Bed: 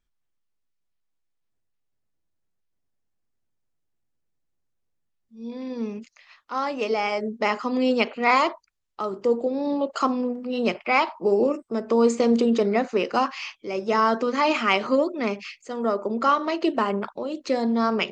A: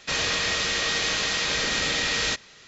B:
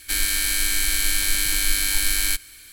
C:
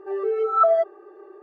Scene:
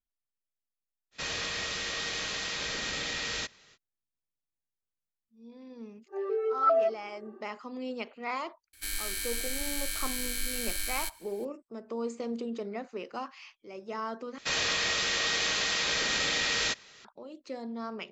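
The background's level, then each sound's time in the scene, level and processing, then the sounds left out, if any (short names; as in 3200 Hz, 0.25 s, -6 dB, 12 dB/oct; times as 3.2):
bed -15.5 dB
1.11 add A -9 dB, fades 0.05 s
6.06 add C -6.5 dB, fades 0.10 s
8.73 add B -12.5 dB
14.38 replace with A -3.5 dB + low shelf 230 Hz -6 dB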